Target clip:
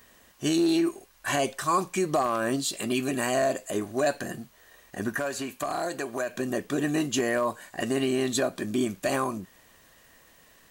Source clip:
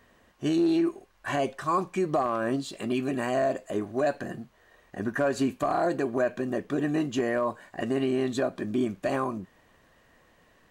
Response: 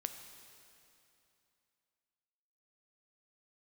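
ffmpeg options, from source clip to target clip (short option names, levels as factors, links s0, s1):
-filter_complex "[0:a]asettb=1/sr,asplit=3[s0][s1][s2];[s0]atrim=end=5.144[s3];[s1]atrim=start=5.14:end=6.35,asetpts=PTS-STARTPTS,afade=t=in:d=0.004:c=qsin,afade=t=out:st=1.206:d=0.004:c=qsin,acrossover=split=520|2700[s4][s5][s6];[s4]acompressor=threshold=0.0141:ratio=4[s7];[s5]acompressor=threshold=0.0282:ratio=4[s8];[s6]acompressor=threshold=0.00316:ratio=4[s9];[s7][s8][s9]amix=inputs=3:normalize=0[s10];[s2]atrim=start=6.346[s11];[s3][s10]acrossfade=d=0.004:c1=hsin:c2=qsin[s12];[s12][s11]acrossfade=d=0.004:c1=qsin:c2=hsin,crystalizer=i=4:c=0"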